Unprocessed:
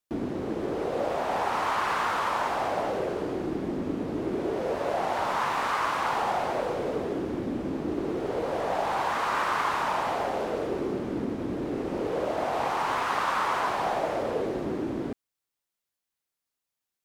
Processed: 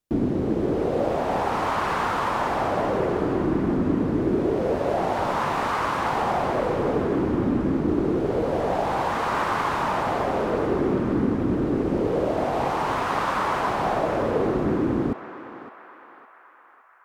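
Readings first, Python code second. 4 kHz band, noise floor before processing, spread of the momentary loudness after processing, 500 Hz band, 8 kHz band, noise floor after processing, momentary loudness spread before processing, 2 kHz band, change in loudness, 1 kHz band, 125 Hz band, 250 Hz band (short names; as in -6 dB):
+0.5 dB, under -85 dBFS, 1 LU, +5.5 dB, 0.0 dB, -50 dBFS, 5 LU, +1.5 dB, +5.0 dB, +3.0 dB, +11.0 dB, +8.0 dB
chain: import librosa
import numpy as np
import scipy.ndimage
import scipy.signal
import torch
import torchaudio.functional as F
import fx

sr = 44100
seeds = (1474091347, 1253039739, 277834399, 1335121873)

y = fx.low_shelf(x, sr, hz=420.0, db=12.0)
y = fx.echo_banded(y, sr, ms=561, feedback_pct=64, hz=1500.0, wet_db=-8)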